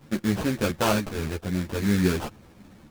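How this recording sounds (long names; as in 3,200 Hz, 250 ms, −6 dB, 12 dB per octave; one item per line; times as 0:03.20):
aliases and images of a low sample rate 2,000 Hz, jitter 20%
a shimmering, thickened sound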